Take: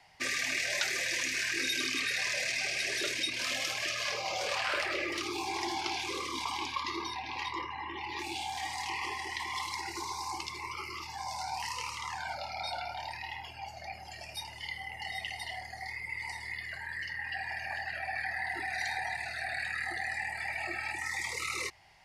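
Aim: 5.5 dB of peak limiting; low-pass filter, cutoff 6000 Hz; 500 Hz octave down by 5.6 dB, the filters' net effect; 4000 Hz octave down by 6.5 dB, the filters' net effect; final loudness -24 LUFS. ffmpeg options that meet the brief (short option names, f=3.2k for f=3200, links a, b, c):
-af "lowpass=6k,equalizer=f=500:t=o:g=-8,equalizer=f=4k:t=o:g=-7.5,volume=14dB,alimiter=limit=-13dB:level=0:latency=1"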